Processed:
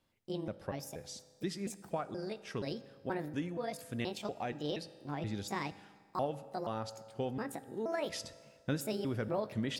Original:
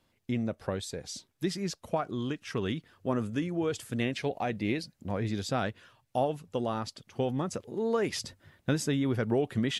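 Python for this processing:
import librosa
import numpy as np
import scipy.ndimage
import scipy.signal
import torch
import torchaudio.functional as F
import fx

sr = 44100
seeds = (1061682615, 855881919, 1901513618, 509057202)

y = fx.pitch_trill(x, sr, semitones=6.5, every_ms=238)
y = fx.rev_fdn(y, sr, rt60_s=1.9, lf_ratio=0.85, hf_ratio=0.7, size_ms=11.0, drr_db=13.5)
y = F.gain(torch.from_numpy(y), -6.5).numpy()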